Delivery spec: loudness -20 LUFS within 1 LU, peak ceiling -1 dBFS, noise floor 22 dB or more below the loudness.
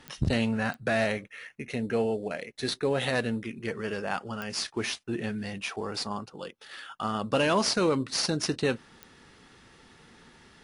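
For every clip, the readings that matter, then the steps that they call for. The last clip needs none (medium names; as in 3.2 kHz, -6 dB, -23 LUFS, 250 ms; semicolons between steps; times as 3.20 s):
clicks found 4; loudness -29.5 LUFS; peak level -13.0 dBFS; loudness target -20.0 LUFS
-> de-click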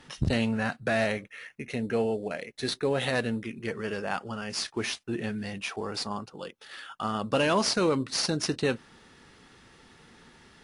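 clicks found 0; loudness -29.5 LUFS; peak level -13.0 dBFS; loudness target -20.0 LUFS
-> trim +9.5 dB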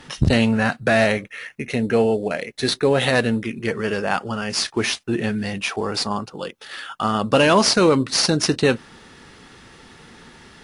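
loudness -20.0 LUFS; peak level -3.5 dBFS; noise floor -47 dBFS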